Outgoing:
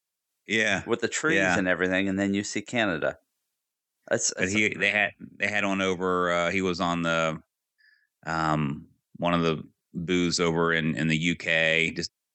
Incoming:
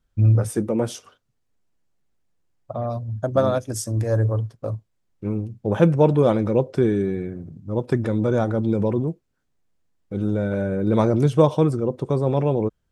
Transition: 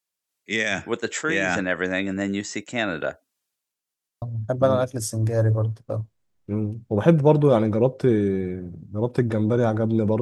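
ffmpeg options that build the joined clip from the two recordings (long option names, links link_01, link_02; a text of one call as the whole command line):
ffmpeg -i cue0.wav -i cue1.wav -filter_complex "[0:a]apad=whole_dur=10.21,atrim=end=10.21,asplit=3[link_01][link_02][link_03];[link_01]atrim=end=3.942[link_04];[link_02]atrim=start=3.798:end=3.942[link_05];[link_03]atrim=start=3.798:end=3.942[link_06];[1:a]atrim=start=2.958:end=8.95[link_07];[link_04][link_05]acrossfade=duration=0.004:curve1=hsin:curve2=hsin[link_08];[link_08][link_06]acrossfade=duration=0.004:curve1=hsin:curve2=hsin[link_09];[link_09][link_07]acrossfade=duration=0.004:curve1=hsin:curve2=hsin" out.wav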